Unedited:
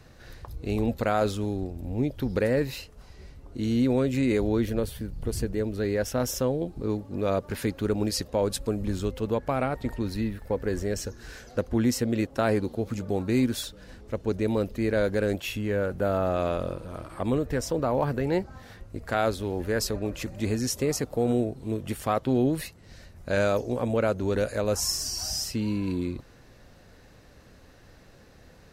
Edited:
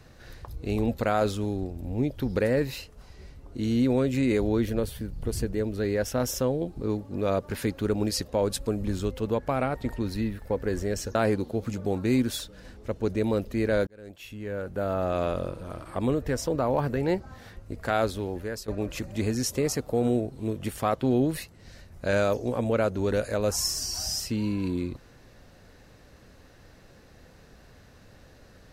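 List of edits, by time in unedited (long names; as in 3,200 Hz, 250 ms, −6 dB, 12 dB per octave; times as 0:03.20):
0:11.15–0:12.39: remove
0:15.11–0:16.50: fade in
0:19.39–0:19.92: fade out, to −15 dB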